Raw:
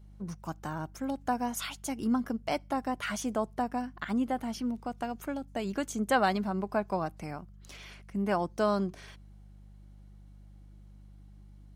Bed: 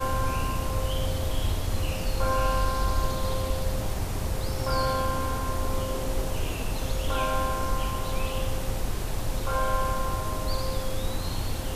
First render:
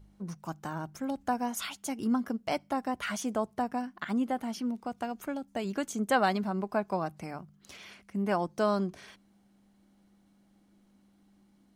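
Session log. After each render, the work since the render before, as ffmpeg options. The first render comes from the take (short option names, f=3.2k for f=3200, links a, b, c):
-af "bandreject=f=50:t=h:w=4,bandreject=f=100:t=h:w=4,bandreject=f=150:t=h:w=4"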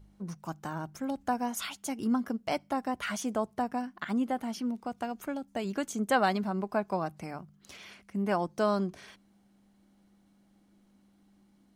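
-af anull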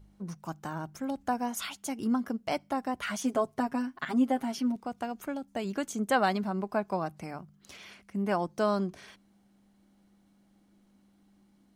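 -filter_complex "[0:a]asettb=1/sr,asplit=3[a][b][c];[a]atrim=end=3.234[d];[b]atrim=start=3.23:end=4.76,asetpts=PTS-STARTPTS,afade=t=in:d=0.004:c=qsin,afade=t=out:st=1.526:d=0.004:c=qsin,aecho=1:1:7.4:0.9,atrim=end_sample=67473[e];[c]atrim=start=4.756[f];[d][e]acrossfade=d=0.004:c1=hsin:c2=qsin[g];[g][f]acrossfade=d=0.004:c1=qsin:c2=hsin"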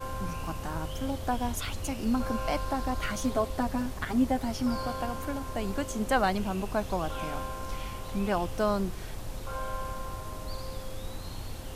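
-filter_complex "[1:a]volume=-9dB[a];[0:a][a]amix=inputs=2:normalize=0"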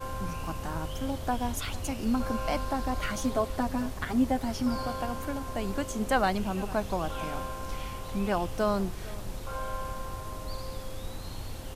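-filter_complex "[0:a]asplit=2[a][b];[b]adelay=454.8,volume=-19dB,highshelf=f=4k:g=-10.2[c];[a][c]amix=inputs=2:normalize=0"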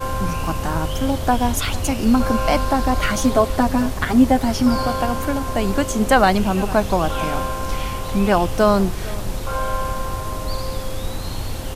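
-af "volume=12dB,alimiter=limit=-3dB:level=0:latency=1"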